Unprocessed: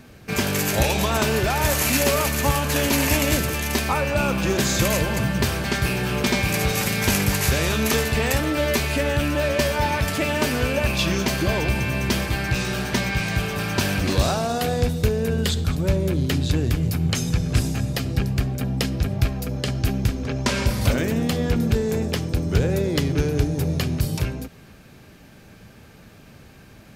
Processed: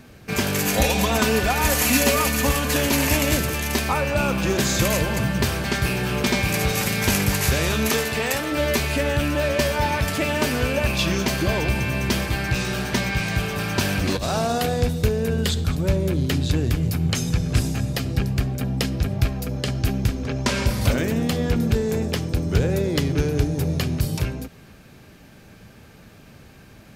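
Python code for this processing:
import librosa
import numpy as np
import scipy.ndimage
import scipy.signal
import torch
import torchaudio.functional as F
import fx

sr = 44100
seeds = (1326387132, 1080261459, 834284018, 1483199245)

y = fx.comb(x, sr, ms=4.1, depth=0.65, at=(0.65, 2.76))
y = fx.highpass(y, sr, hz=fx.line((7.89, 150.0), (8.51, 400.0)), slope=6, at=(7.89, 8.51), fade=0.02)
y = fx.over_compress(y, sr, threshold_db=-23.0, ratio=-1.0, at=(14.14, 14.66))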